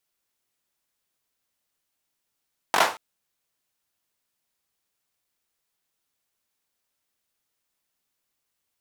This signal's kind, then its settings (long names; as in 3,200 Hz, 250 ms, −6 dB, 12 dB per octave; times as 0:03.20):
synth clap length 0.23 s, apart 21 ms, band 910 Hz, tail 0.34 s